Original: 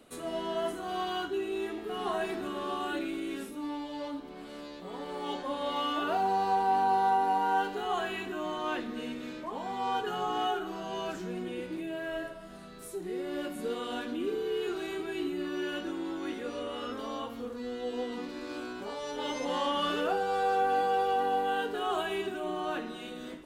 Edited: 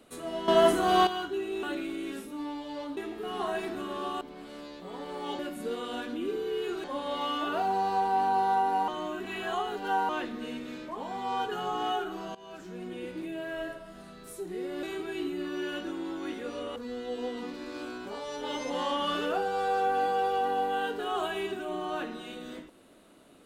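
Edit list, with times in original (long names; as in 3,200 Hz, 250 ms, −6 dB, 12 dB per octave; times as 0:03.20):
0:00.48–0:01.07: clip gain +11.5 dB
0:01.63–0:02.87: move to 0:04.21
0:07.43–0:08.64: reverse
0:10.90–0:11.94: fade in equal-power, from −19 dB
0:13.38–0:14.83: move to 0:05.39
0:16.76–0:17.51: remove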